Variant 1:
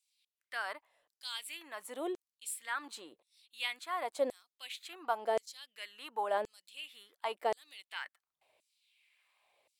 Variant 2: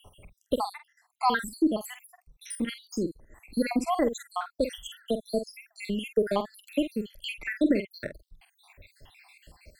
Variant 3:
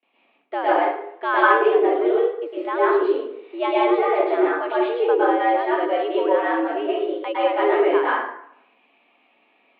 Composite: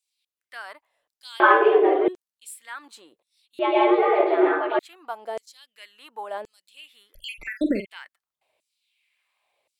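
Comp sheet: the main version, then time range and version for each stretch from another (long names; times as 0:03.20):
1
0:01.40–0:02.08: punch in from 3
0:03.59–0:04.79: punch in from 3
0:07.14–0:07.86: punch in from 2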